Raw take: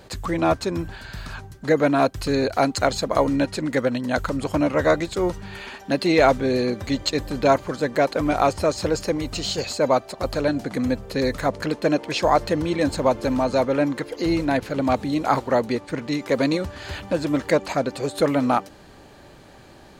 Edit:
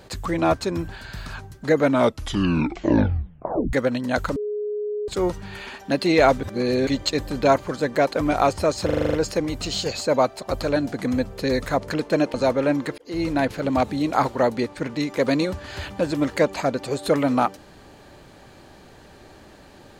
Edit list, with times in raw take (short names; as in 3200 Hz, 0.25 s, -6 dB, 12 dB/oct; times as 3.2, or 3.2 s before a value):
1.82 tape stop 1.91 s
4.36–5.08 bleep 418 Hz -24 dBFS
6.43–6.87 reverse
8.85 stutter 0.04 s, 8 plays
12.06–13.46 cut
14.1–14.44 fade in